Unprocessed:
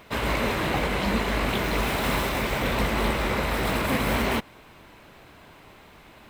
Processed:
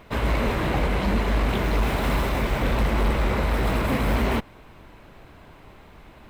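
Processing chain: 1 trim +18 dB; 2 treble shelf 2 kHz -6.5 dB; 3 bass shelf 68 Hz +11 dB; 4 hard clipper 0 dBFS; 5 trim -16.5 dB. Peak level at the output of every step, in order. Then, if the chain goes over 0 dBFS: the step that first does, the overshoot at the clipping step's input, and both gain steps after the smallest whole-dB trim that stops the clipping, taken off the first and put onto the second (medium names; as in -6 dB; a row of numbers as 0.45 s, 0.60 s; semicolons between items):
+6.5 dBFS, +5.5 dBFS, +8.5 dBFS, 0.0 dBFS, -16.5 dBFS; step 1, 8.5 dB; step 1 +9 dB, step 5 -7.5 dB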